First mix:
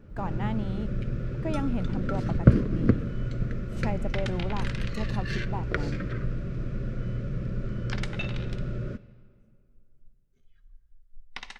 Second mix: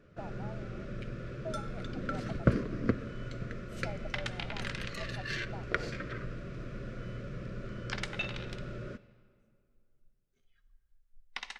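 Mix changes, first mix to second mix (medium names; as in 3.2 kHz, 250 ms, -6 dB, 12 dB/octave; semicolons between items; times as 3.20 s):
speech: add two resonant band-passes 300 Hz, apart 2.3 oct; master: add bass shelf 310 Hz -12 dB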